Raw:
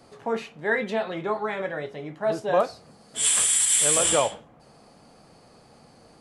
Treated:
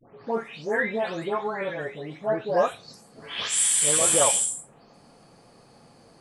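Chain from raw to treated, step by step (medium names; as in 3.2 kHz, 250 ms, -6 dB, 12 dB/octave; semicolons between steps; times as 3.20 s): delay that grows with frequency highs late, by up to 338 ms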